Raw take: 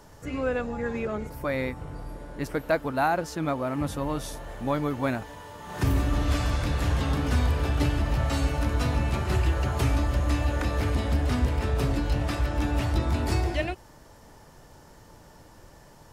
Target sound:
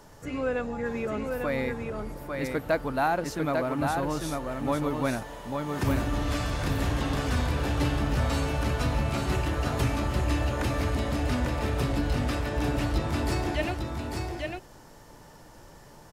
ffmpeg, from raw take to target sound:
-filter_complex "[0:a]equalizer=f=65:t=o:w=0.92:g=-6,asplit=2[a][b];[b]asoftclip=type=tanh:threshold=-30.5dB,volume=-11.5dB[c];[a][c]amix=inputs=2:normalize=0,aecho=1:1:848:0.631,volume=-2dB"

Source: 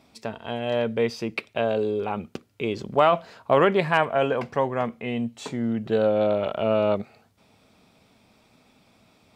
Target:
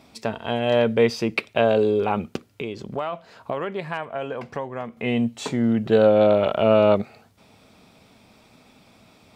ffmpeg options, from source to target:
-filter_complex "[0:a]asettb=1/sr,asplit=3[a][b][c];[a]atrim=end=2.494[d];[b]atrim=start=2.49:end=4.97,asetpts=PTS-STARTPTS,afade=t=in:d=0.004:c=qsin,afade=t=out:st=2.476:d=0.004:c=qsin,acompressor=threshold=-36dB:ratio=3[e];[c]atrim=start=4.966[f];[d][e]acrossfade=d=0.004:c1=hsin:c2=qsin[g];[g][f]acrossfade=d=0.004:c1=qsin:c2=hsin,volume=5.5dB"

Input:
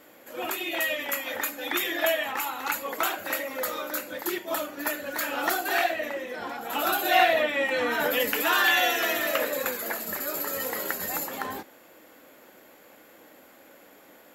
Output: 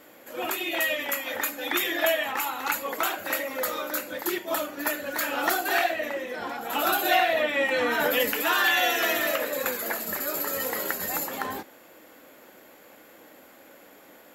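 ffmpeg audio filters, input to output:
-af "alimiter=limit=-13dB:level=0:latency=1:release=362,volume=1.5dB"

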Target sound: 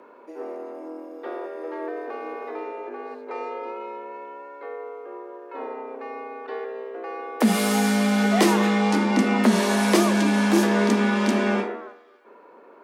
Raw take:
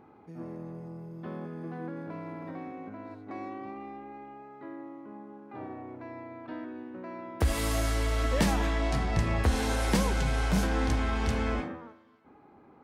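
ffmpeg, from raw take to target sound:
-af "afreqshift=150,bandreject=f=52.52:t=h:w=4,bandreject=f=105.04:t=h:w=4,bandreject=f=157.56:t=h:w=4,bandreject=f=210.08:t=h:w=4,bandreject=f=262.6:t=h:w=4,bandreject=f=315.12:t=h:w=4,bandreject=f=367.64:t=h:w=4,bandreject=f=420.16:t=h:w=4,bandreject=f=472.68:t=h:w=4,bandreject=f=525.2:t=h:w=4,bandreject=f=577.72:t=h:w=4,bandreject=f=630.24:t=h:w=4,bandreject=f=682.76:t=h:w=4,volume=7.5dB"

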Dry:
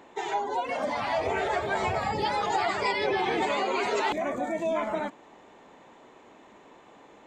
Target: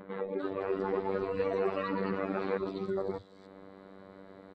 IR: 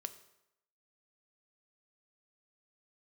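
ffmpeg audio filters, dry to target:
-filter_complex "[0:a]afftfilt=real='hypot(re,im)*cos(PI*b)':imag='0':win_size=1024:overlap=0.75,adynamicequalizer=threshold=0.00398:dfrequency=770:dqfactor=6.2:tfrequency=770:tqfactor=6.2:attack=5:release=100:ratio=0.375:range=2:mode=boostabove:tftype=bell,acrossover=split=180|5800[a][b][c];[a]adelay=60[d];[c]adelay=450[e];[d][b][e]amix=inputs=3:normalize=0,atempo=1.6,acompressor=mode=upward:threshold=-39dB:ratio=2.5,asetrate=24750,aresample=44100,atempo=1.7818,volume=-1.5dB"

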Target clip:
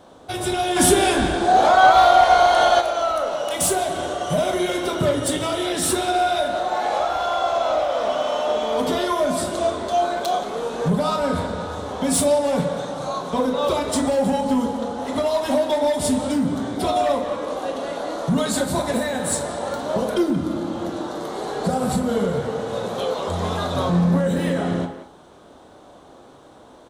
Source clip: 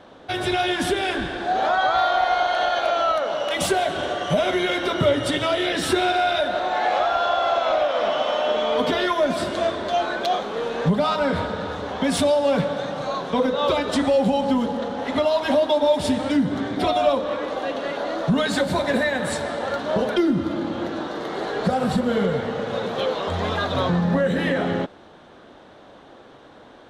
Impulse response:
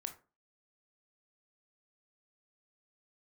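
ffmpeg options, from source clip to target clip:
-filter_complex "[0:a]firequalizer=gain_entry='entry(1100,0);entry(1700,-7);entry(8200,12)':delay=0.05:min_phase=1,volume=14dB,asoftclip=hard,volume=-14dB,equalizer=f=65:w=1.3:g=4,asplit=2[a][b];[b]adelay=180,highpass=300,lowpass=3.4k,asoftclip=type=hard:threshold=-21.5dB,volume=-10dB[c];[a][c]amix=inputs=2:normalize=0[d];[1:a]atrim=start_sample=2205[e];[d][e]afir=irnorm=-1:irlink=0,asplit=3[f][g][h];[f]afade=t=out:st=0.75:d=0.02[i];[g]acontrast=85,afade=t=in:st=0.75:d=0.02,afade=t=out:st=2.8:d=0.02[j];[h]afade=t=in:st=2.8:d=0.02[k];[i][j][k]amix=inputs=3:normalize=0,volume=2.5dB"

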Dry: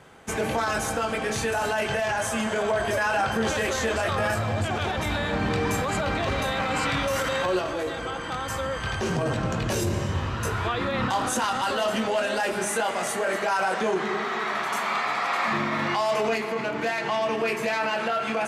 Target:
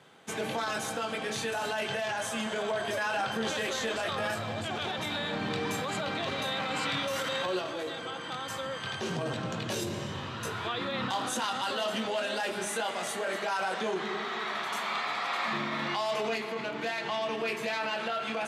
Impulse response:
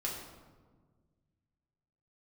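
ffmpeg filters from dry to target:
-af "highpass=f=120:w=0.5412,highpass=f=120:w=1.3066,equalizer=f=3.6k:w=2:g=7.5,volume=-7dB"

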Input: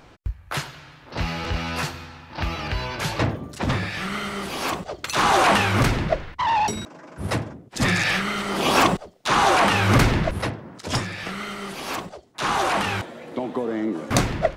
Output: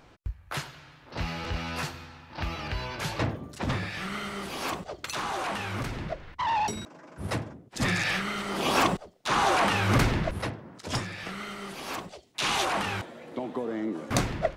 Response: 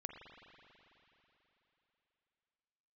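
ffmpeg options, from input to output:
-filter_complex "[0:a]asettb=1/sr,asplit=3[a][b][c];[a]atrim=end=5.104[d];[b]atrim=start=5.1:end=6.34,asetpts=PTS-STARTPTS,afade=t=in:d=0.004:c=qsin,afade=t=out:st=1.236:d=0.004:c=qsin,acompressor=threshold=-26dB:ratio=3[e];[c]atrim=start=6.336[f];[d][e]acrossfade=d=0.004:c1=hsin:c2=qsin[g];[g][f]acrossfade=d=0.004:c1=qsin:c2=hsin,asettb=1/sr,asplit=3[h][i][j];[h]atrim=end=12.094[k];[i]atrim=start=12.09:end=12.65,asetpts=PTS-STARTPTS,afade=t=in:d=0.004:c=qsin,afade=t=out:st=0.556:d=0.004:c=qsin,highshelf=f=1.9k:t=q:w=1.5:g=7[l];[j]atrim=start=12.646[m];[k][l]acrossfade=d=0.004:c1=hsin:c2=qsin[n];[n][m]acrossfade=d=0.004:c1=qsin:c2=hsin,volume=-6dB"

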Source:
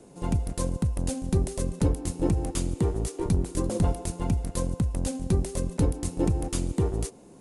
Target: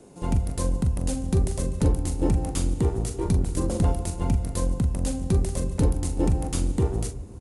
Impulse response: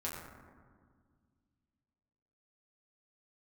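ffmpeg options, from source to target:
-filter_complex "[0:a]asplit=2[a][b];[b]adelay=42,volume=-9dB[c];[a][c]amix=inputs=2:normalize=0,asplit=2[d][e];[1:a]atrim=start_sample=2205,lowshelf=f=140:g=9.5[f];[e][f]afir=irnorm=-1:irlink=0,volume=-16.5dB[g];[d][g]amix=inputs=2:normalize=0"

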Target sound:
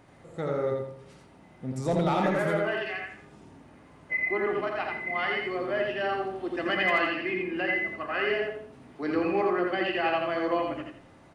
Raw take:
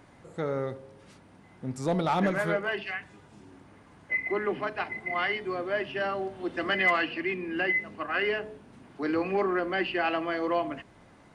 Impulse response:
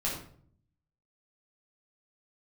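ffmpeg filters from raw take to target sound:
-filter_complex "[0:a]equalizer=f=1.4k:w=1.3:g=-3,aecho=1:1:84|168|252|336:0.708|0.191|0.0516|0.0139,asplit=2[a][b];[1:a]atrim=start_sample=2205,lowpass=3.3k,lowshelf=f=250:g=-11[c];[b][c]afir=irnorm=-1:irlink=0,volume=-9.5dB[d];[a][d]amix=inputs=2:normalize=0,volume=-2dB"

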